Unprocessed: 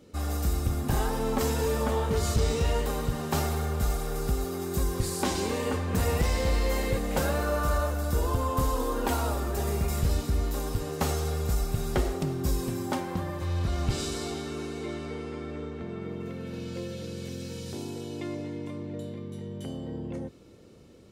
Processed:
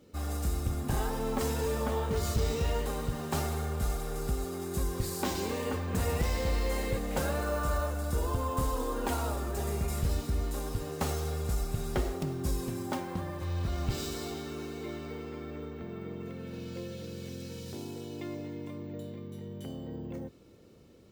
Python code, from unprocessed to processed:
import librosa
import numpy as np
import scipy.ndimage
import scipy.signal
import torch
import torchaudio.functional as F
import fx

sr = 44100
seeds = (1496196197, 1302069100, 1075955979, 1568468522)

y = np.repeat(x[::2], 2)[:len(x)]
y = y * 10.0 ** (-4.0 / 20.0)